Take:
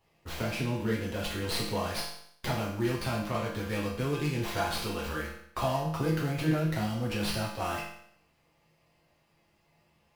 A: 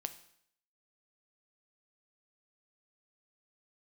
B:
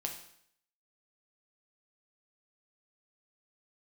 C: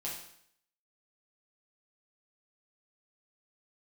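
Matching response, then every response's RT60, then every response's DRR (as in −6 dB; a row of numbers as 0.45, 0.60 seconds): C; 0.65, 0.65, 0.65 seconds; 9.5, 2.0, −5.5 decibels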